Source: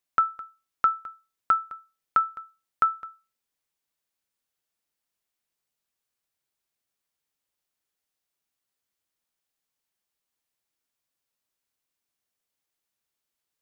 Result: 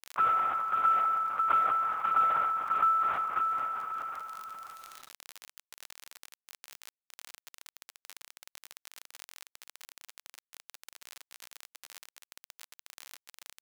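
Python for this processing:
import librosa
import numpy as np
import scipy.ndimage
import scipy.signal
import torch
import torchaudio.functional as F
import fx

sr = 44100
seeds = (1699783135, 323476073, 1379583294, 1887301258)

y = fx.spec_trails(x, sr, decay_s=1.48)
y = fx.peak_eq(y, sr, hz=1600.0, db=-12.5, octaves=0.43)
y = fx.echo_feedback(y, sr, ms=545, feedback_pct=18, wet_db=-8.0)
y = fx.lpc_vocoder(y, sr, seeds[0], excitation='whisper', order=10)
y = scipy.signal.sosfilt(scipy.signal.butter(2, 2100.0, 'lowpass', fs=sr, output='sos'), y)
y = fx.dmg_crackle(y, sr, seeds[1], per_s=32.0, level_db=-52.0)
y = fx.highpass(y, sr, hz=1100.0, slope=6)
y = fx.quant_companded(y, sr, bits=8)
y = fx.env_flatten(y, sr, amount_pct=50)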